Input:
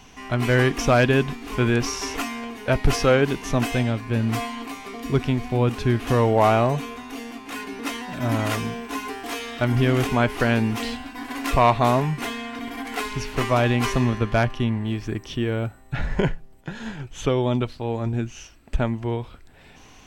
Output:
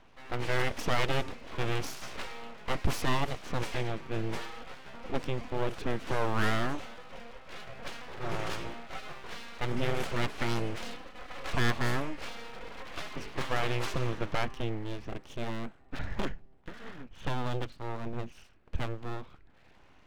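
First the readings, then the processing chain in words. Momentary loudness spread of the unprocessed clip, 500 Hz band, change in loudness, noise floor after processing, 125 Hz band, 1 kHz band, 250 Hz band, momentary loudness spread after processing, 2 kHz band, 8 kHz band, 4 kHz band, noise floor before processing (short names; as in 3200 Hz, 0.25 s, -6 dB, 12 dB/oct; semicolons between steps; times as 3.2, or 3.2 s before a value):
14 LU, -13.0 dB, -12.0 dB, -57 dBFS, -13.0 dB, -11.0 dB, -14.0 dB, 15 LU, -9.0 dB, -11.0 dB, -7.5 dB, -48 dBFS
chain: low-pass opened by the level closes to 2000 Hz, open at -14 dBFS; full-wave rectifier; gain -8 dB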